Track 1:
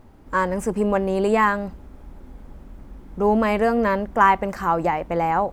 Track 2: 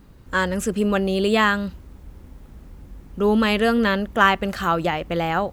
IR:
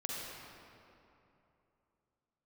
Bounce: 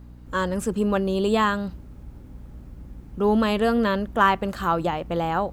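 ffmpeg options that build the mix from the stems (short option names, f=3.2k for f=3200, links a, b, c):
-filter_complex "[0:a]volume=-9dB[a];[1:a]aeval=exprs='val(0)+0.0141*(sin(2*PI*60*n/s)+sin(2*PI*2*60*n/s)/2+sin(2*PI*3*60*n/s)/3+sin(2*PI*4*60*n/s)/4+sin(2*PI*5*60*n/s)/5)':c=same,volume=-5.5dB[b];[a][b]amix=inputs=2:normalize=0"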